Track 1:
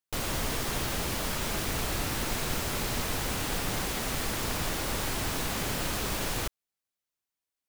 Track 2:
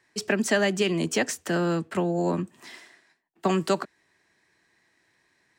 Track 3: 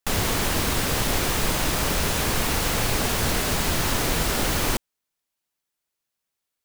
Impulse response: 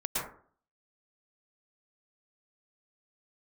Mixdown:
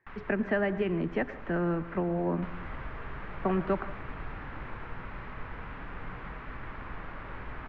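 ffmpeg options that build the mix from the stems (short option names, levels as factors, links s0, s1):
-filter_complex "[0:a]adelay=2300,volume=0.891,asplit=2[s0][s1];[s1]volume=0.106[s2];[1:a]volume=0.501,asplit=3[s3][s4][s5];[s4]volume=0.106[s6];[2:a]volume=0.168,asplit=2[s7][s8];[s8]volume=0.112[s9];[s5]apad=whole_len=293080[s10];[s7][s10]sidechaincompress=threshold=0.0112:ratio=8:attack=45:release=458[s11];[s0][s11]amix=inputs=2:normalize=0,lowshelf=f=760:t=q:w=1.5:g=-11,acompressor=threshold=0.00891:ratio=6,volume=1[s12];[3:a]atrim=start_sample=2205[s13];[s2][s6][s9]amix=inputs=3:normalize=0[s14];[s14][s13]afir=irnorm=-1:irlink=0[s15];[s3][s12][s15]amix=inputs=3:normalize=0,lowpass=f=2100:w=0.5412,lowpass=f=2100:w=1.3066,lowshelf=f=99:g=6.5"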